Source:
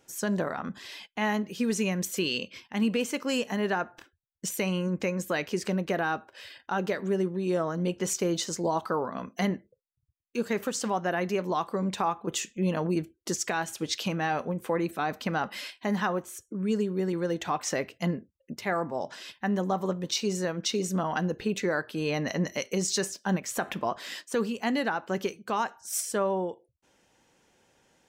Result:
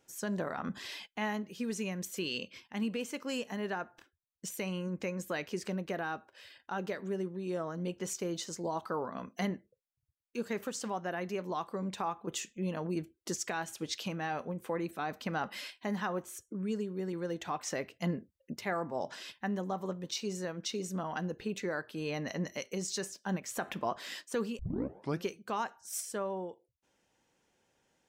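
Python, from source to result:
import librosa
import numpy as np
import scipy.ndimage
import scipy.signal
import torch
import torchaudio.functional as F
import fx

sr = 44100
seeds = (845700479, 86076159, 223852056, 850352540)

y = fx.edit(x, sr, fx.tape_start(start_s=24.59, length_s=0.67), tone=tone)
y = fx.rider(y, sr, range_db=10, speed_s=0.5)
y = F.gain(torch.from_numpy(y), -7.0).numpy()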